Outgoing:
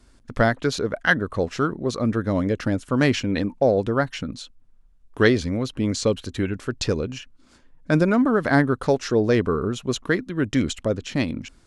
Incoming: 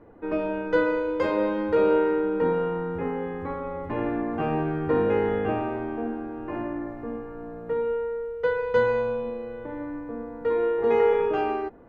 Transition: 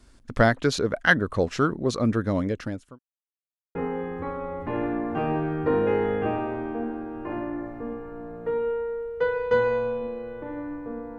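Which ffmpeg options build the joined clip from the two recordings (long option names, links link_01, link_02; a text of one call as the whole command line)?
ffmpeg -i cue0.wav -i cue1.wav -filter_complex "[0:a]apad=whole_dur=11.18,atrim=end=11.18,asplit=2[link_01][link_02];[link_01]atrim=end=2.99,asetpts=PTS-STARTPTS,afade=type=out:start_time=1.81:duration=1.18:curve=qsin[link_03];[link_02]atrim=start=2.99:end=3.75,asetpts=PTS-STARTPTS,volume=0[link_04];[1:a]atrim=start=2.98:end=10.41,asetpts=PTS-STARTPTS,afade=type=in:duration=0.004:curve=hsin[link_05];[link_03][link_04][link_05]concat=n=3:v=0:a=1" out.wav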